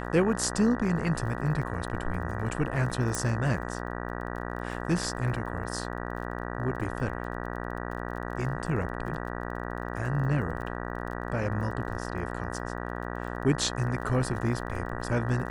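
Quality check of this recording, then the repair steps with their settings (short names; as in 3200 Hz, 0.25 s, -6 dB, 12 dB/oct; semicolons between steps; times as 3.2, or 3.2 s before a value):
buzz 60 Hz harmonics 32 -35 dBFS
crackle 30/s -39 dBFS
3.15 pop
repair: de-click; de-hum 60 Hz, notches 32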